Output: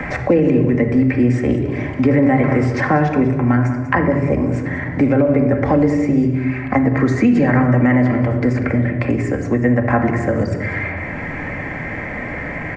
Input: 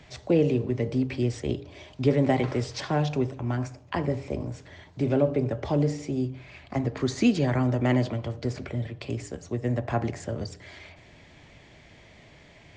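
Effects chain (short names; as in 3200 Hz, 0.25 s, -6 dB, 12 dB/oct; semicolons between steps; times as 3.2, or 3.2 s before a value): resonant high shelf 2600 Hz -10 dB, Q 3; on a send: echo 0.192 s -15.5 dB; on the sum: shoebox room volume 3600 m³, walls furnished, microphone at 2.1 m; maximiser +12.5 dB; three-band squash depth 70%; gain -3.5 dB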